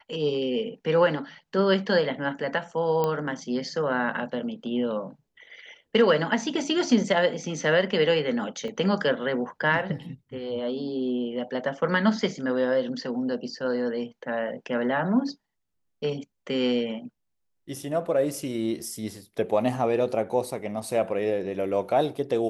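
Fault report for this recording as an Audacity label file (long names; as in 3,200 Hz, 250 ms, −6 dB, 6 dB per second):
3.040000	3.040000	click −13 dBFS
8.680000	8.680000	drop-out 2.8 ms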